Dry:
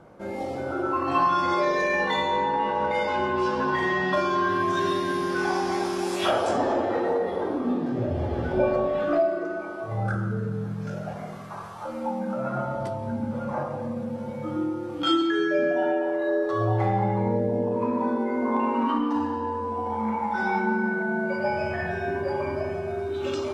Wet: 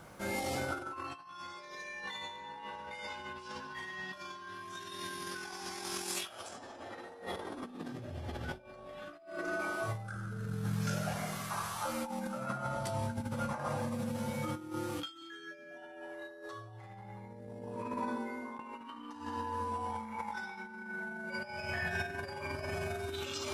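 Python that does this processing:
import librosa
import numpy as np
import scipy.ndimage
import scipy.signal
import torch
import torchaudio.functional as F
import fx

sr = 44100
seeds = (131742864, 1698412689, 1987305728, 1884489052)

y = fx.edit(x, sr, fx.fade_out_to(start_s=17.42, length_s=1.17, floor_db=-21.5), tone=tone)
y = fx.high_shelf(y, sr, hz=8300.0, db=11.5)
y = fx.over_compress(y, sr, threshold_db=-31.0, ratio=-0.5)
y = fx.tone_stack(y, sr, knobs='5-5-5')
y = y * 10.0 ** (8.5 / 20.0)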